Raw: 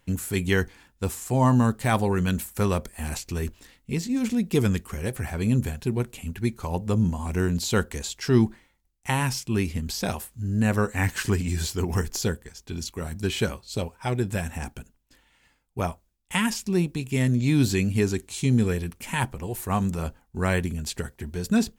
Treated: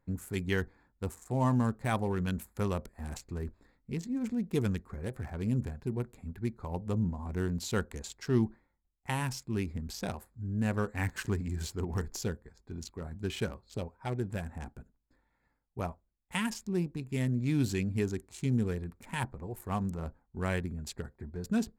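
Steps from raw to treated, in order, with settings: Wiener smoothing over 15 samples; gain -8 dB

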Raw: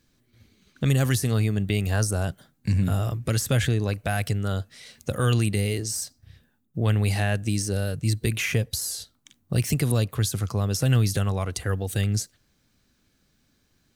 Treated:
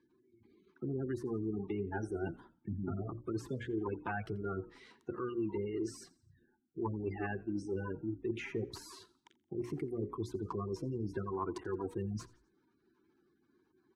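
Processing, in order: block floating point 3-bit; spectral gate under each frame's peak -20 dB strong; double band-pass 590 Hz, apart 1.4 oct; reverse; compressor 6:1, threshold -44 dBFS, peak gain reduction 13 dB; reverse; notches 60/120/180/240/300/360/420/480/540/600 Hz; on a send: frequency-shifting echo 86 ms, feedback 43%, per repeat -52 Hz, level -22 dB; on the sum: gain +10.5 dB

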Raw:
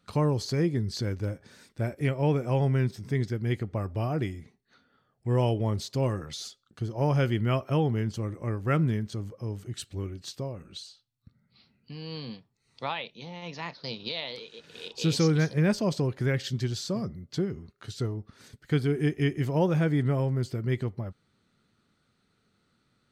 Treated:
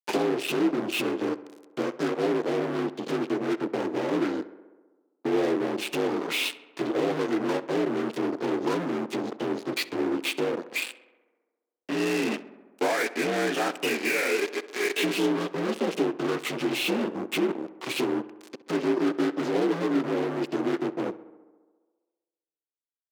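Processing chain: inharmonic rescaling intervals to 82%; 13–13.45 sample leveller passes 1; compressor 12:1, threshold -37 dBFS, peak gain reduction 18 dB; fuzz box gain 46 dB, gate -47 dBFS; ladder high-pass 270 Hz, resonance 50%; on a send: tape echo 67 ms, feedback 77%, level -16 dB, low-pass 2600 Hz

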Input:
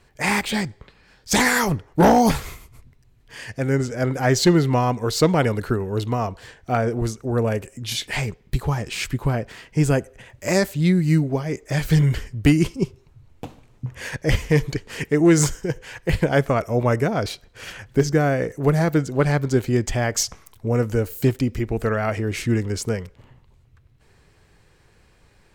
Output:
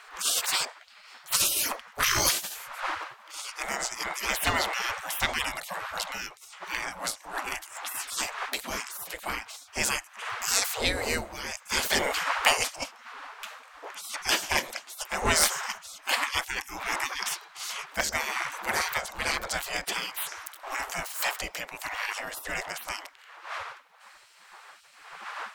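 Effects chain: wind noise 280 Hz -27 dBFS; spectral gate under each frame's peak -25 dB weak; gain +8 dB

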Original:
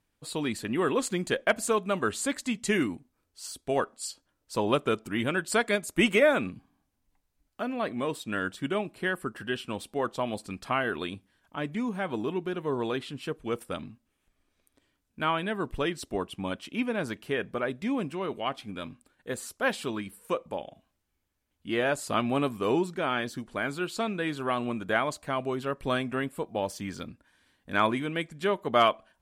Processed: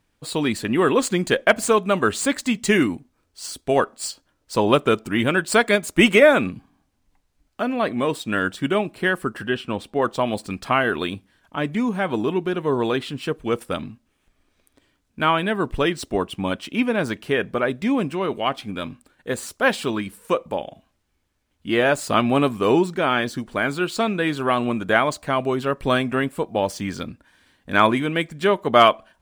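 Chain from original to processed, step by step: median filter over 3 samples; 9.47–10.02 high shelf 4400 Hz -10.5 dB; gain +8.5 dB

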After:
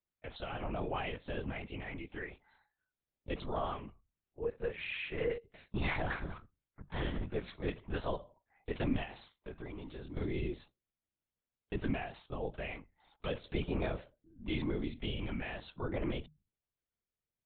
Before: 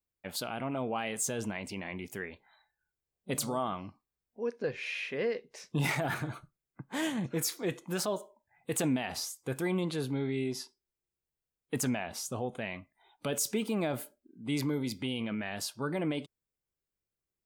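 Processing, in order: notches 50/100/150 Hz; LPC vocoder at 8 kHz whisper; 9.03–10.17 compressor 4:1, threshold -41 dBFS, peak gain reduction 12 dB; gain -3 dB

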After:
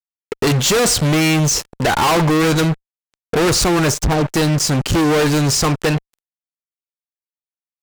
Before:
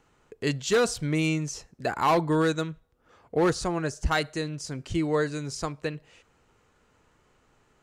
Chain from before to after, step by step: added harmonics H 3 -40 dB, 4 -22 dB, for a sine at -14 dBFS; 3.93–4.34 treble ducked by the level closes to 340 Hz, closed at -20 dBFS; fuzz box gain 41 dB, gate -46 dBFS

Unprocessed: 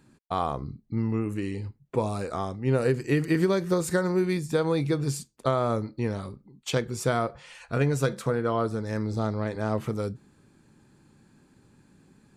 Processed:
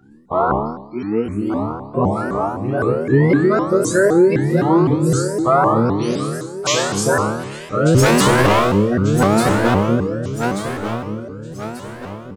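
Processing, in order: bin magnitudes rounded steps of 30 dB; 0.62–1.27 HPF 380 Hz 12 dB/oct; 5.85–7 tilt +2.5 dB/oct; spectral gate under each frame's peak -30 dB strong; comb 6 ms, depth 33%; 7.95–8.53 sample leveller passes 5; resonator bank D2 fifth, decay 0.82 s; feedback echo 1.188 s, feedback 40%, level -10 dB; maximiser +30 dB; shaped vibrato saw up 3.9 Hz, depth 250 cents; gain -3.5 dB

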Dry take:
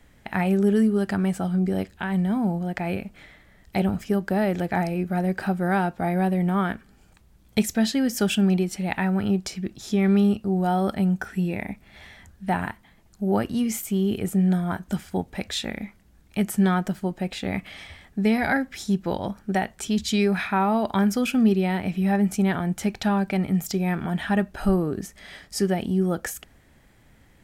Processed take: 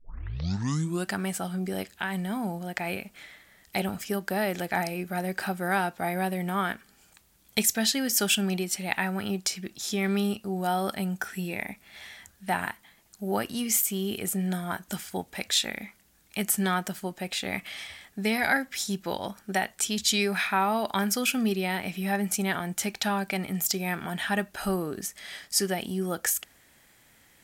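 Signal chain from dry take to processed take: tape start at the beginning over 1.11 s; tilt +3 dB/oct; gain -1.5 dB

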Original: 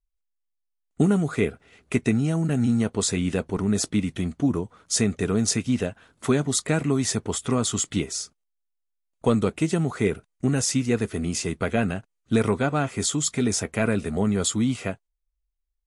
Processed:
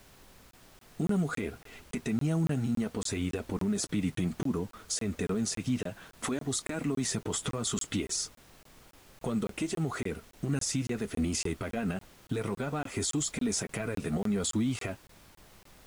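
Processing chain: compressor, threshold -27 dBFS, peak gain reduction 12 dB; limiter -25 dBFS, peak gain reduction 11 dB; flange 0.61 Hz, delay 2.2 ms, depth 4.9 ms, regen -38%; added noise pink -63 dBFS; crackling interface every 0.28 s, samples 1024, zero, from 0.51; gain +7 dB

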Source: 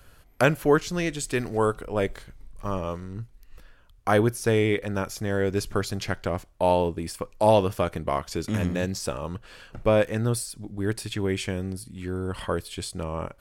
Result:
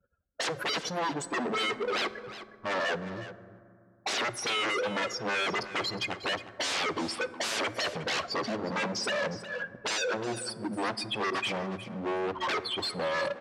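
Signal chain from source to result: spectral contrast raised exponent 3.3; expander -50 dBFS; bell 680 Hz +13 dB 2.4 oct; in parallel at -3 dB: limiter -21 dBFS, peak gain reduction 23.5 dB; on the sum: wavefolder -21 dBFS; 11.3–11.76 dispersion highs, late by 59 ms, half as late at 620 Hz; overloaded stage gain 31 dB; BPF 270–5600 Hz; echo 0.361 s -14 dB; reverb RT60 2.5 s, pre-delay 4 ms, DRR 14 dB; gain +3 dB

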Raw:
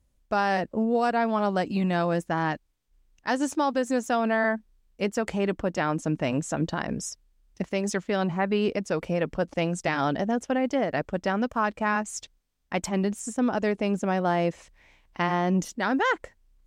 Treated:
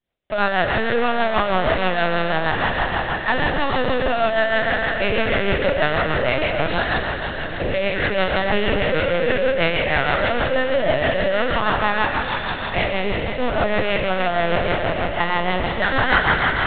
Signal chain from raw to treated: spectral trails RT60 2.59 s; HPF 440 Hz 12 dB/oct; high shelf 2600 Hz +4.5 dB; notch 800 Hz, Q 12; in parallel at -6 dB: fuzz box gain 45 dB, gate -47 dBFS; on the sum: rotary speaker horn 6.3 Hz; LPC vocoder at 8 kHz pitch kept; on a send: split-band echo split 760 Hz, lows 0.789 s, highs 0.266 s, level -13 dB

